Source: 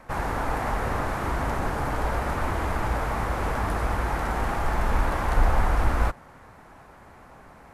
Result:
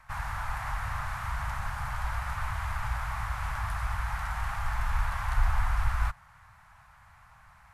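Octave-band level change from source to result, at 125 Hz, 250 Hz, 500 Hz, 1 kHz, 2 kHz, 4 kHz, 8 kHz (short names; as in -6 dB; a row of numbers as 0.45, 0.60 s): -5.0, -19.5, -19.5, -7.0, -4.0, -4.5, -5.0 dB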